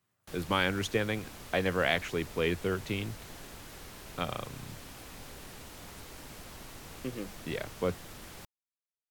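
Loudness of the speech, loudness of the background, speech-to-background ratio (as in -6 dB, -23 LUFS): -33.0 LUFS, -47.0 LUFS, 14.0 dB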